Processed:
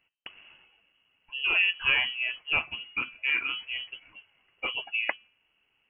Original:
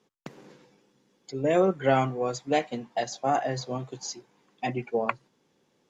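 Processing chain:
high-shelf EQ 2,100 Hz +5 dB
hum removal 235 Hz, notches 3
voice inversion scrambler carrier 3,100 Hz
level −3 dB

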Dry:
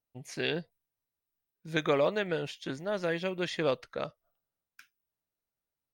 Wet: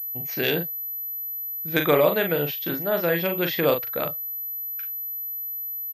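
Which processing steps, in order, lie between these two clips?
double-tracking delay 41 ms −6 dB
switching amplifier with a slow clock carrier 12,000 Hz
level +7 dB

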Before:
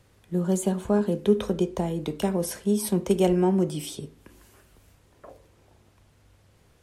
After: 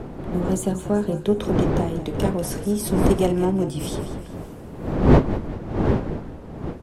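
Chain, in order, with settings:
one-sided soft clipper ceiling −12.5 dBFS
wind on the microphone 350 Hz −26 dBFS
echo with shifted repeats 190 ms, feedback 46%, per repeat −51 Hz, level −12 dB
level +1.5 dB

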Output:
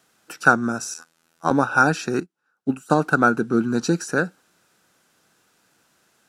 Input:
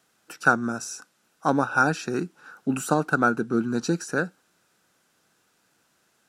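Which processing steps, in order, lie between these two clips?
0:00.94–0:01.51: phases set to zero 82.2 Hz
0:02.20–0:02.90: expander for the loud parts 2.5 to 1, over −39 dBFS
level +4 dB

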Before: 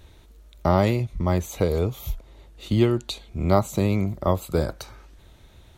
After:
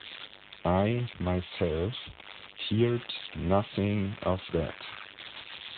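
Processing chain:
spike at every zero crossing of −10.5 dBFS
level −6 dB
AMR narrowband 10.2 kbit/s 8,000 Hz

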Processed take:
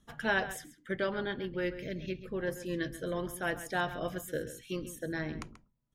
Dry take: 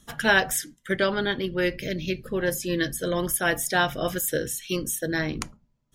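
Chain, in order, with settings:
high-shelf EQ 3,800 Hz −11.5 dB
slap from a distant wall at 23 metres, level −13 dB
level −8.5 dB

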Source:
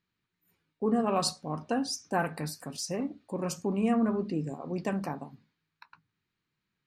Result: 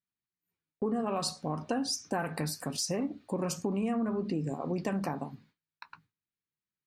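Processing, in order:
noise gate with hold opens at −57 dBFS
in parallel at −2 dB: brickwall limiter −25.5 dBFS, peak gain reduction 10 dB
on the sum: downward compressor, threshold −28 dBFS, peak gain reduction 8.5 dB

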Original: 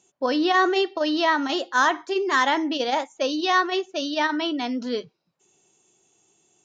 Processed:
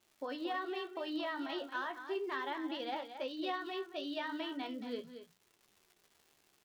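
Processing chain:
low-pass filter 4,000 Hz 24 dB per octave
mains-hum notches 60/120/180/240/300 Hz
downward compressor, threshold −24 dBFS, peak gain reduction 10 dB
surface crackle 300 per second −41 dBFS
flanger 0.36 Hz, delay 8.7 ms, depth 9 ms, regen +45%
single-tap delay 226 ms −10 dB
level −8 dB

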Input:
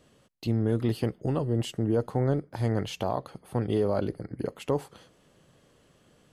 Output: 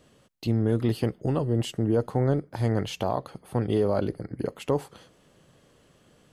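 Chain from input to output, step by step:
level +2 dB

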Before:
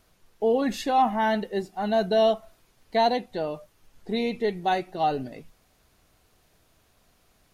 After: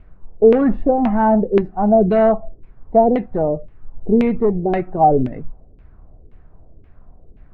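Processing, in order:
spectral tilt −4.5 dB per octave
in parallel at −3.5 dB: gain into a clipping stage and back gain 16.5 dB
on the sum: auto-filter low-pass saw down 1.9 Hz 350–2,500 Hz
level −1.5 dB

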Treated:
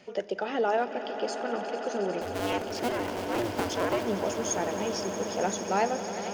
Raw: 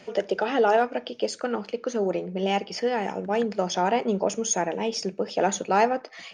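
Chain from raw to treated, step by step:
0:02.21–0:04.05: sub-harmonics by changed cycles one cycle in 2, inverted
echo that builds up and dies away 90 ms, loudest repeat 8, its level −14.5 dB
level −6 dB

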